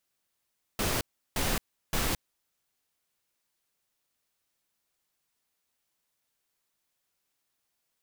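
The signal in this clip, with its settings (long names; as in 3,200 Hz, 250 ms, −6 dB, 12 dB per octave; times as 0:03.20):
noise bursts pink, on 0.22 s, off 0.35 s, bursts 3, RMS −28.5 dBFS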